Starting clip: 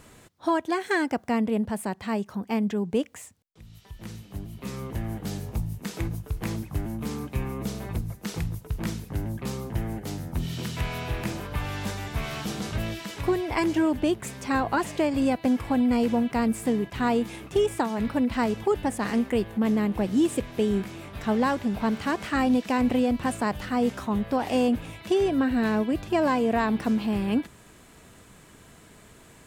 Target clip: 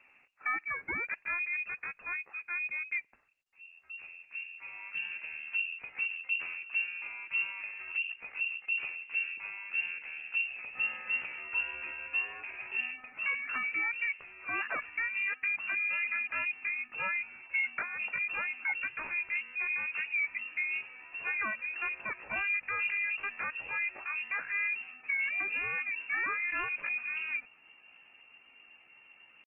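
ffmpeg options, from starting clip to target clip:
-af "asetrate=68011,aresample=44100,atempo=0.64842,asubboost=boost=5.5:cutoff=76,lowpass=f=2.4k:t=q:w=0.5098,lowpass=f=2.4k:t=q:w=0.6013,lowpass=f=2.4k:t=q:w=0.9,lowpass=f=2.4k:t=q:w=2.563,afreqshift=-2800,volume=-9dB" -ar 48000 -c:a libopus -b:a 16k

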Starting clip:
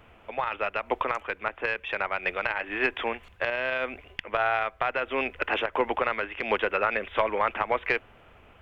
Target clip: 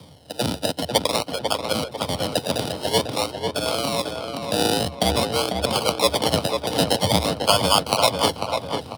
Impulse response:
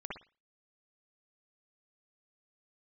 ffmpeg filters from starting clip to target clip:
-filter_complex "[0:a]adynamicsmooth=sensitivity=2:basefreq=1k,highshelf=f=5.2k:g=-10,areverse,acompressor=mode=upward:threshold=-35dB:ratio=2.5,areverse,acrusher=samples=31:mix=1:aa=0.000001:lfo=1:lforange=18.6:lforate=0.51,superequalizer=6b=0.501:11b=0.447:13b=2.82:14b=2.82:16b=2.24,afreqshift=73,asplit=2[a][b];[b]adelay=476,lowpass=f=2.7k:p=1,volume=-4.5dB,asplit=2[c][d];[d]adelay=476,lowpass=f=2.7k:p=1,volume=0.45,asplit=2[e][f];[f]adelay=476,lowpass=f=2.7k:p=1,volume=0.45,asplit=2[g][h];[h]adelay=476,lowpass=f=2.7k:p=1,volume=0.45,asplit=2[i][j];[j]adelay=476,lowpass=f=2.7k:p=1,volume=0.45,asplit=2[k][l];[l]adelay=476,lowpass=f=2.7k:p=1,volume=0.45[m];[c][e][g][i][k][m]amix=inputs=6:normalize=0[n];[a][n]amix=inputs=2:normalize=0,asetrate=42336,aresample=44100,volume=5.5dB"

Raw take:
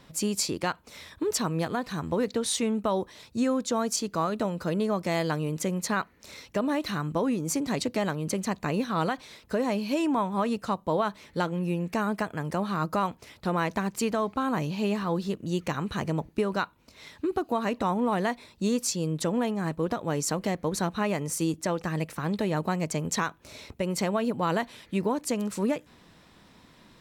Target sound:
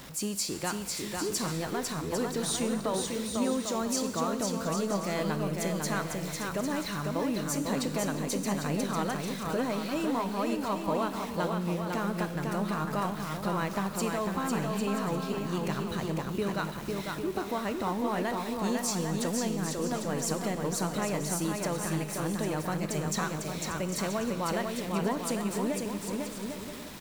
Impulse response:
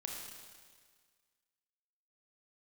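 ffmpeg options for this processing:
-filter_complex "[0:a]aeval=exprs='val(0)+0.5*0.015*sgn(val(0))':c=same,aecho=1:1:500|800|980|1088|1153:0.631|0.398|0.251|0.158|0.1,asplit=2[a][b];[1:a]atrim=start_sample=2205,asetrate=57330,aresample=44100,highshelf=f=5.3k:g=10.5[c];[b][c]afir=irnorm=-1:irlink=0,volume=-6dB[d];[a][d]amix=inputs=2:normalize=0,volume=-8dB"

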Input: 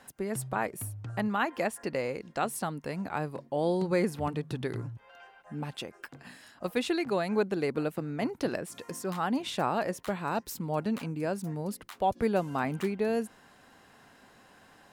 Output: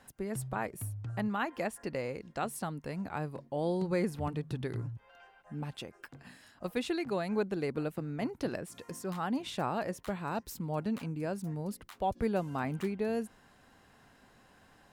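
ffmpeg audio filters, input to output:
-af "lowshelf=f=110:g=11,volume=-5dB"

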